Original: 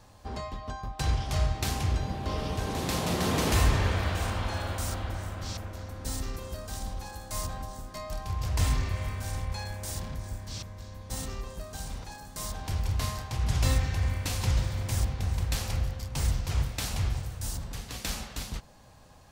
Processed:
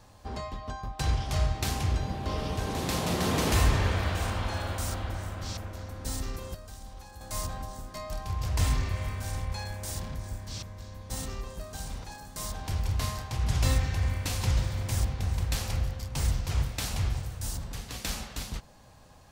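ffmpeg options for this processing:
ffmpeg -i in.wav -filter_complex "[0:a]asettb=1/sr,asplit=3[link_01][link_02][link_03];[link_01]atrim=end=6.544[link_04];[link_02]atrim=start=6.54:end=7.21,asetpts=PTS-STARTPTS,afade=type=in:duration=0.004:curve=qsin,afade=type=out:start_time=0.666:duration=0.004:curve=qsin,acrossover=split=88|420[link_05][link_06][link_07];[link_05]acompressor=threshold=-44dB:ratio=4[link_08];[link_06]acompressor=threshold=-55dB:ratio=4[link_09];[link_07]acompressor=threshold=-50dB:ratio=4[link_10];[link_08][link_09][link_10]amix=inputs=3:normalize=0[link_11];[link_03]atrim=start=7.206[link_12];[link_04][link_11]acrossfade=duration=0.004:curve1=hsin:curve2=qsin[link_13];[link_13][link_12]acrossfade=duration=0.004:curve1=qsin:curve2=hsin" out.wav

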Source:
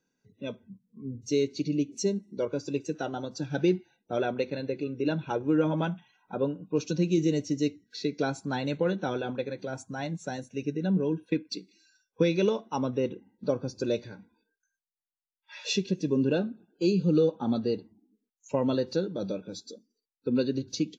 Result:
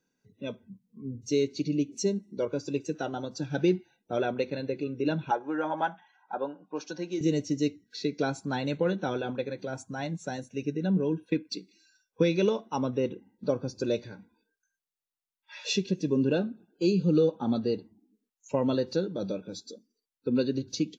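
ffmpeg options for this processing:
ffmpeg -i in.wav -filter_complex "[0:a]asettb=1/sr,asplit=3[link_01][link_02][link_03];[link_01]atrim=end=5.314[link_04];[link_02]atrim=start=5.31:end=7.21,asetpts=PTS-STARTPTS,afade=type=in:duration=0.004:curve=qsin,afade=type=out:start_time=1.896:duration=0.004:curve=qsin,highpass=430,equalizer=frequency=450:width_type=q:width=4:gain=-7,equalizer=frequency=820:width_type=q:width=4:gain=10,equalizer=frequency=1700:width_type=q:width=4:gain=8,equalizer=frequency=2600:width_type=q:width=4:gain=-8,equalizer=frequency=3900:width_type=q:width=4:gain=-5,lowpass=frequency=5700:width=0.5412,lowpass=frequency=5700:width=1.3066[link_05];[link_03]atrim=start=7.206[link_06];[link_04][link_05]acrossfade=duration=0.004:curve1=hsin:curve2=qsin[link_07];[link_07][link_06]acrossfade=duration=0.004:curve1=qsin:curve2=hsin" out.wav

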